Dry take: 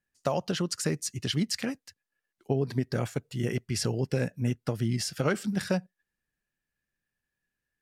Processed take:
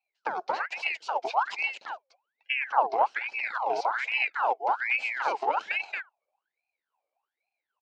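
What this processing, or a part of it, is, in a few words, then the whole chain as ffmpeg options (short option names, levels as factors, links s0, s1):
voice changer toy: -af "lowshelf=f=160:g=11.5,aecho=1:1:227:0.708,aeval=exprs='val(0)*sin(2*PI*1500*n/s+1500*0.65/1.2*sin(2*PI*1.2*n/s))':c=same,highpass=590,equalizer=f=830:t=q:w=4:g=6,equalizer=f=1200:t=q:w=4:g=-7,equalizer=f=1900:t=q:w=4:g=-10,equalizer=f=3500:t=q:w=4:g=-9,lowpass=f=4200:w=0.5412,lowpass=f=4200:w=1.3066"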